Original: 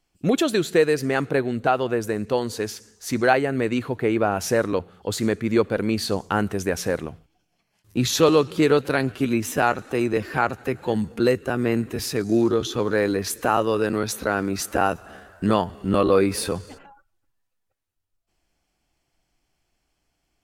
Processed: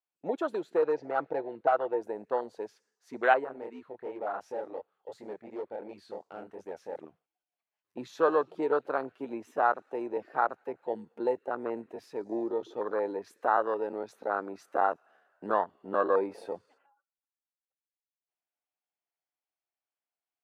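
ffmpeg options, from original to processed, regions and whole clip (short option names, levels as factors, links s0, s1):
-filter_complex "[0:a]asettb=1/sr,asplit=3[s0][s1][s2];[s0]atrim=end=0.824[s3];[s1]atrim=start=0.82:end=2.01,asetpts=PTS-STARTPTS,afade=t=in:d=0.004:c=qsin,afade=t=out:st=1.186:d=0.004:c=qsin,lowpass=f=5900:w=0.5412,lowpass=f=5900:w=1.3066,aeval=exprs='0.251*(abs(mod(val(0)/0.251+3,4)-2)-1)':c=same,aecho=1:1:6.1:0.54,atrim=end_sample=52479[s4];[s2]atrim=start=2.006[s5];[s3][s4]acrossfade=d=0.004:c1=hsin:c2=qsin[s6];[s6][s5]acrossfade=d=0.004:c1=qsin:c2=hsin,asettb=1/sr,asplit=3[s7][s8][s9];[s7]atrim=end=3.444[s10];[s8]atrim=start=3.44:end=6.96,asetpts=PTS-STARTPTS,afade=t=in:d=0.004:c=qsin,afade=t=out:st=3.516:d=0.004:c=qsin,flanger=delay=19.5:depth=7.5:speed=2.8,equalizer=f=320:t=o:w=2.4:g=-2.5,volume=13.3,asoftclip=hard,volume=0.075[s11];[s9]atrim=start=6.956[s12];[s10][s11]acrossfade=d=0.004:c1=hsin:c2=qsin[s13];[s13][s12]acrossfade=d=0.004:c1=qsin:c2=hsin,lowpass=f=1300:p=1,afwtdn=0.0501,highpass=700"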